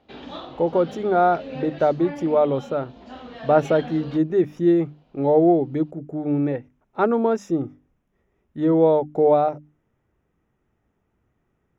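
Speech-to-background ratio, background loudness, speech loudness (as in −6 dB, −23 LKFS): 17.0 dB, −38.0 LKFS, −21.0 LKFS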